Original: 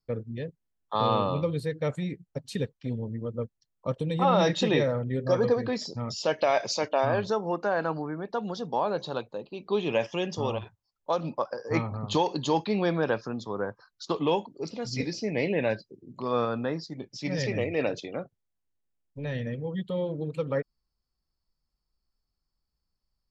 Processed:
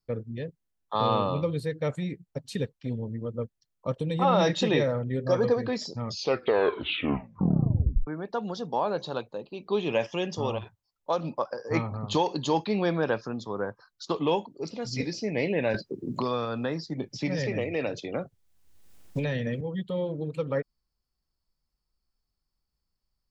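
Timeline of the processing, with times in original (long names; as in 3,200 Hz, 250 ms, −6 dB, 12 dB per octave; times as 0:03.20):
0:06.01: tape stop 2.06 s
0:15.74–0:19.61: multiband upward and downward compressor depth 100%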